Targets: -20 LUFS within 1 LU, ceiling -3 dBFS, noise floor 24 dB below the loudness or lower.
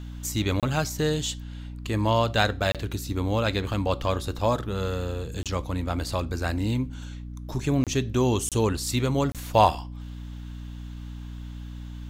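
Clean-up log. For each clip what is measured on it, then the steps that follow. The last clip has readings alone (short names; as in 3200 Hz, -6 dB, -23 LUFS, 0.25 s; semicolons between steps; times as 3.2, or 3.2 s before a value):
dropouts 6; longest dropout 27 ms; hum 60 Hz; harmonics up to 300 Hz; hum level -35 dBFS; loudness -26.5 LUFS; peak -5.0 dBFS; loudness target -20.0 LUFS
-> interpolate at 0.6/2.72/5.43/7.84/8.49/9.32, 27 ms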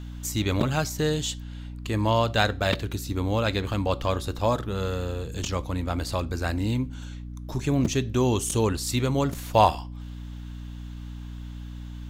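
dropouts 0; hum 60 Hz; harmonics up to 300 Hz; hum level -35 dBFS
-> notches 60/120/180/240/300 Hz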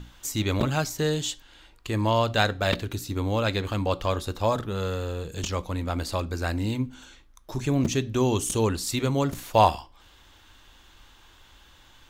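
hum none; loudness -26.5 LUFS; peak -5.0 dBFS; loudness target -20.0 LUFS
-> gain +6.5 dB; limiter -3 dBFS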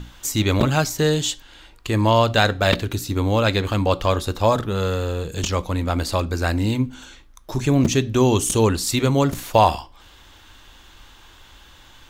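loudness -20.5 LUFS; peak -3.0 dBFS; noise floor -49 dBFS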